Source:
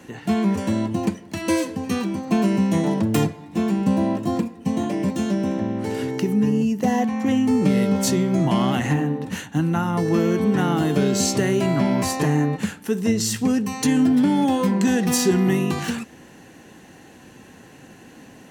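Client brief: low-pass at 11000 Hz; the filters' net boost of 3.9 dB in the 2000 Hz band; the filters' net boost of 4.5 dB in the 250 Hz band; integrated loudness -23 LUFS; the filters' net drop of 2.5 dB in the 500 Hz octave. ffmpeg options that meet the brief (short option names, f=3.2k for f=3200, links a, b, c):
-af "lowpass=11k,equalizer=f=250:t=o:g=7,equalizer=f=500:t=o:g=-7,equalizer=f=2k:t=o:g=5,volume=-5dB"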